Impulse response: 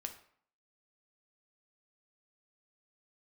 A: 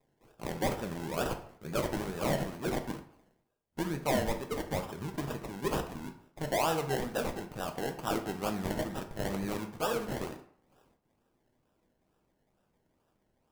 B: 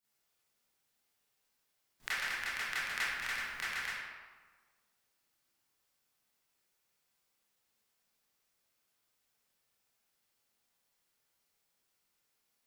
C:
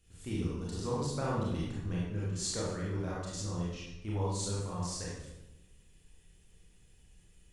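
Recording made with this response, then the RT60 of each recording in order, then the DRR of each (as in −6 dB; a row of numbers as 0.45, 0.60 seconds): A; 0.60, 1.5, 0.95 seconds; 5.0, −12.0, −6.5 decibels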